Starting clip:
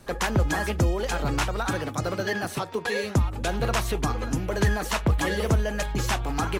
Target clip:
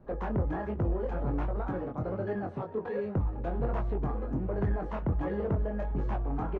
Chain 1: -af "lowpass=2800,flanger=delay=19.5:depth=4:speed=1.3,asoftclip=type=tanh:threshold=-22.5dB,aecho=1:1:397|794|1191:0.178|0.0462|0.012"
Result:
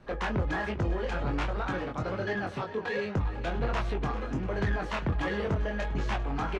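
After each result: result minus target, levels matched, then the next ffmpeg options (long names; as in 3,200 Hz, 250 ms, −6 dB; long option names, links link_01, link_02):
2,000 Hz band +11.0 dB; echo-to-direct +6.5 dB
-af "lowpass=800,flanger=delay=19.5:depth=4:speed=1.3,asoftclip=type=tanh:threshold=-22.5dB,aecho=1:1:397|794|1191:0.178|0.0462|0.012"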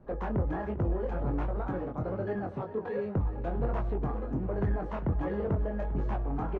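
echo-to-direct +6.5 dB
-af "lowpass=800,flanger=delay=19.5:depth=4:speed=1.3,asoftclip=type=tanh:threshold=-22.5dB,aecho=1:1:397|794:0.0841|0.0219"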